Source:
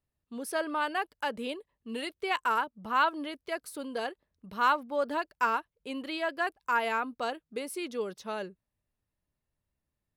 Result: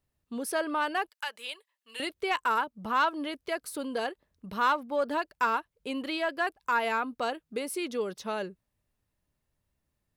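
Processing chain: 1.09–2.00 s: Bessel high-pass 1.7 kHz, order 2; in parallel at -2 dB: compression, threshold -38 dBFS, peak gain reduction 17 dB; on the sum: saturation -15 dBFS, distortion -23 dB

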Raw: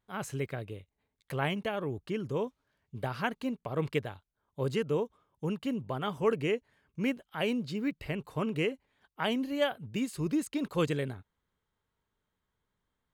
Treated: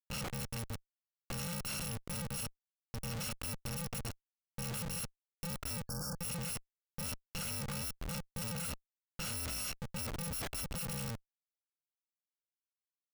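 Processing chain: bit-reversed sample order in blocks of 128 samples; treble shelf 3.6 kHz -5 dB; Schmitt trigger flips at -42 dBFS; spectral selection erased 5.87–6.18 s, 1.7–4.4 kHz; trim -1 dB

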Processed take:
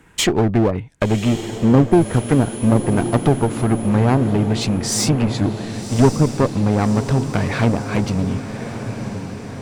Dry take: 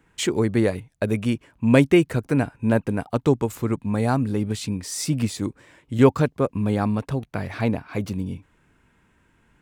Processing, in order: low-pass that closes with the level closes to 540 Hz, closed at -14 dBFS; 1.91–3.88 s: whistle 10 kHz -48 dBFS; treble shelf 8.3 kHz +6.5 dB; in parallel at -1 dB: compression, threshold -27 dBFS, peak gain reduction 16 dB; on the sum: one-sided clip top -23 dBFS; on a send: echo that smears into a reverb 1121 ms, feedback 59%, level -10 dB; on the sum: trim +5 dB

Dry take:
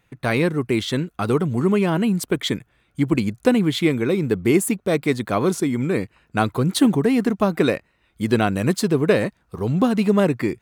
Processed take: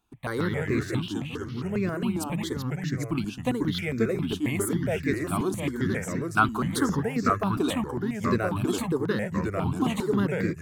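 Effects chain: 1.13–1.83 s: fade in; 5.96–7.00 s: peaking EQ 1.4 kHz +13.5 dB 0.83 oct; ever faster or slower copies 111 ms, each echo -2 st, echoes 3; stepped phaser 7.4 Hz 530–3100 Hz; trim -6 dB

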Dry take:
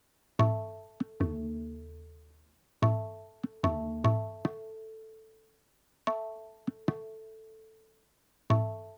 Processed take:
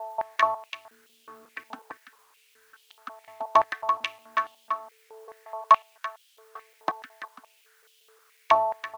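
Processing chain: slices played last to first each 182 ms, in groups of 5; delay 336 ms -8.5 dB; step-sequenced high-pass 4.7 Hz 870–3100 Hz; trim +7 dB

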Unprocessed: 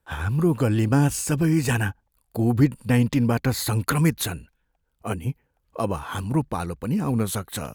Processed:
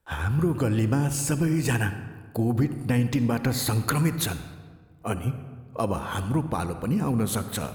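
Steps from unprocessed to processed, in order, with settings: compression, threshold -20 dBFS, peak gain reduction 8.5 dB; on a send: reverberation RT60 1.5 s, pre-delay 47 ms, DRR 10.5 dB

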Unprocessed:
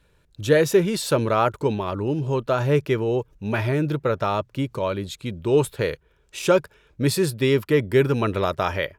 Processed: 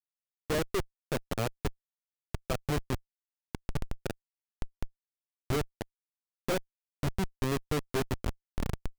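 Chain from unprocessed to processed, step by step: tape stop on the ending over 0.95 s; distance through air 370 m; Schmitt trigger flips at -16.5 dBFS; trim -4.5 dB

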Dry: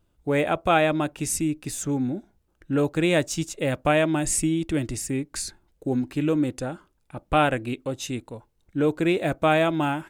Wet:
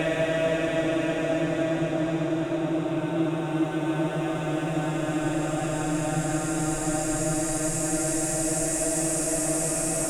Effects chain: Doppler pass-by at 4.52 s, 16 m/s, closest 20 m; delay with an opening low-pass 171 ms, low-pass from 400 Hz, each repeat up 2 oct, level -3 dB; Paulstretch 28×, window 0.25 s, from 3.85 s; trim -4.5 dB

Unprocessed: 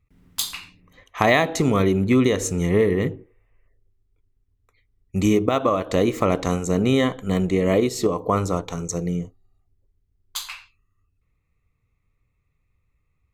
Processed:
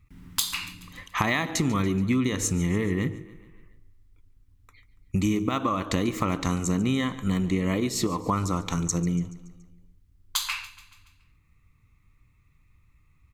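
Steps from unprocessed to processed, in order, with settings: high-order bell 540 Hz -9.5 dB 1.1 oct; compression 4:1, threshold -33 dBFS, peak gain reduction 15 dB; feedback delay 142 ms, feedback 55%, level -18 dB; trim +8.5 dB

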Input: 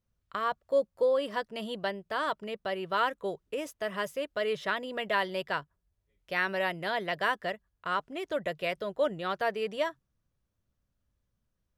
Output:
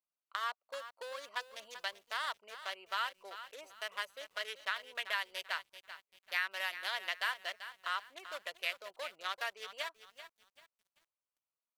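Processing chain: local Wiener filter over 25 samples; tilt EQ +2.5 dB/octave; compression 3:1, threshold -31 dBFS, peak gain reduction 7.5 dB; high-pass 1.2 kHz 12 dB/octave; bit-crushed delay 388 ms, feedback 35%, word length 10-bit, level -12 dB; trim +1 dB

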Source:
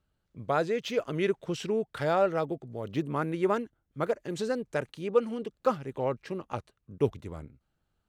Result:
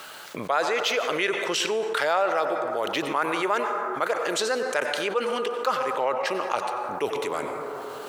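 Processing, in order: high-pass 780 Hz 12 dB/octave; reverberation RT60 1.6 s, pre-delay 82 ms, DRR 12 dB; level flattener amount 70%; trim +4.5 dB

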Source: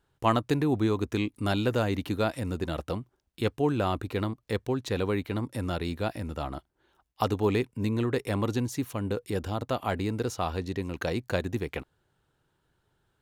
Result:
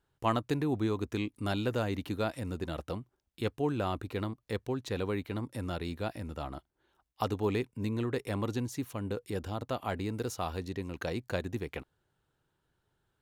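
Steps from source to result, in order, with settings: 10.14–10.69 s: treble shelf 8.8 kHz +8 dB; trim -5 dB

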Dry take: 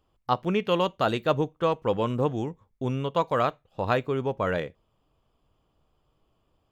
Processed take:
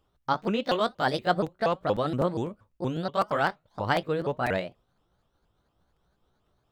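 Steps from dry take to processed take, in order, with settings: sawtooth pitch modulation +5.5 st, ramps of 237 ms; crackling interface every 0.25 s, samples 256, repeat, from 0.71 s

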